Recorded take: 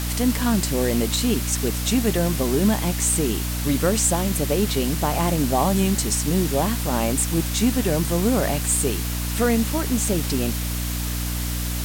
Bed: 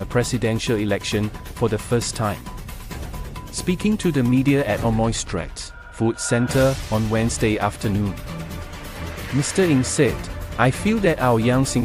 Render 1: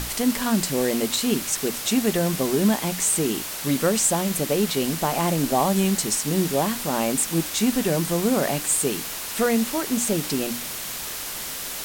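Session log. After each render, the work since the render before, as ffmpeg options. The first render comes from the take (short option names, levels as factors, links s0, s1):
-af "bandreject=f=60:t=h:w=6,bandreject=f=120:t=h:w=6,bandreject=f=180:t=h:w=6,bandreject=f=240:t=h:w=6,bandreject=f=300:t=h:w=6"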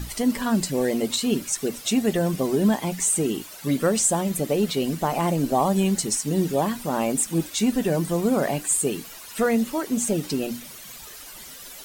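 -af "afftdn=nr=13:nf=-32"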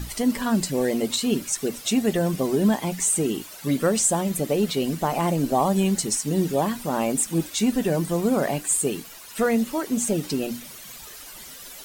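-filter_complex "[0:a]asettb=1/sr,asplit=3[s0][s1][s2];[s0]atrim=end=7.904[s3];[s1]atrim=start=7.9:end=9.7,asetpts=PTS-STARTPTS,afade=t=in:d=0.004:c=qsin,afade=t=out:st=1.796:d=0.004:c=qsin,aeval=exprs='sgn(val(0))*max(abs(val(0))-0.00211,0)':c=same[s4];[s2]atrim=start=9.696[s5];[s3][s4]acrossfade=d=0.004:c1=hsin:c2=qsin[s6];[s6][s5]acrossfade=d=0.004:c1=qsin:c2=hsin"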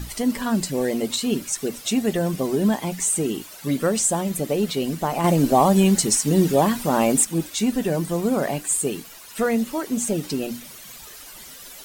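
-filter_complex "[0:a]asettb=1/sr,asplit=3[s0][s1][s2];[s0]atrim=end=5.244[s3];[s1]atrim=start=5.24:end=7.25,asetpts=PTS-STARTPTS,afade=t=in:d=0.004:c=qsin,afade=t=out:st=2.006:d=0.004:c=qsin,acontrast=31[s4];[s2]atrim=start=7.246[s5];[s3][s4]acrossfade=d=0.004:c1=hsin:c2=qsin[s6];[s6][s5]acrossfade=d=0.004:c1=qsin:c2=hsin"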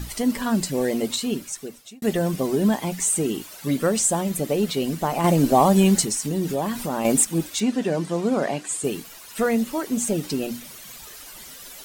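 -filter_complex "[0:a]asettb=1/sr,asplit=3[s0][s1][s2];[s0]atrim=end=6.044[s3];[s1]atrim=start=6.04:end=7.05,asetpts=PTS-STARTPTS,afade=t=in:d=0.004:c=qsin,afade=t=out:st=1.006:d=0.004:c=qsin,acompressor=threshold=0.0501:ratio=2:attack=3.2:release=140:knee=1:detection=peak[s4];[s2]atrim=start=7.046[s5];[s3][s4]acrossfade=d=0.004:c1=hsin:c2=qsin[s6];[s6][s5]acrossfade=d=0.004:c1=qsin:c2=hsin,asettb=1/sr,asplit=3[s7][s8][s9];[s7]atrim=end=7.604[s10];[s8]atrim=start=7.6:end=8.84,asetpts=PTS-STARTPTS,afade=t=in:d=0.004:c=qsin,afade=t=out:st=1.236:d=0.004:c=qsin,highpass=160,lowpass=6700[s11];[s9]atrim=start=8.836[s12];[s10][s11]acrossfade=d=0.004:c1=hsin:c2=qsin[s13];[s13][s12]acrossfade=d=0.004:c1=qsin:c2=hsin,asplit=2[s14][s15];[s14]atrim=end=2.02,asetpts=PTS-STARTPTS,afade=t=out:st=1.04:d=0.98[s16];[s15]atrim=start=2.02,asetpts=PTS-STARTPTS,afade=t=in:d=0.004:c=hsin[s17];[s16][s17]concat=n=2:v=0:a=1"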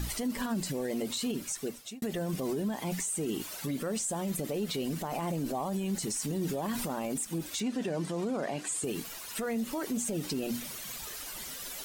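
-af "acompressor=threshold=0.0501:ratio=4,alimiter=level_in=1.12:limit=0.0631:level=0:latency=1:release=27,volume=0.891"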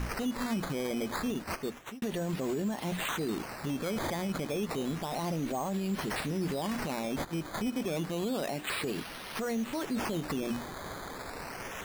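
-af "acrusher=samples=11:mix=1:aa=0.000001:lfo=1:lforange=11:lforate=0.3"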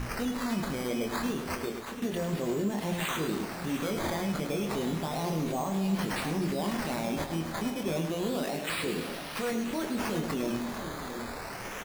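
-filter_complex "[0:a]asplit=2[s0][s1];[s1]adelay=25,volume=0.473[s2];[s0][s2]amix=inputs=2:normalize=0,aecho=1:1:104|240|689|753:0.398|0.188|0.299|0.158"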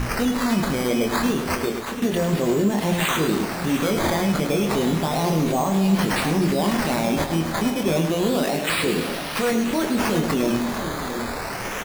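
-af "volume=3.16"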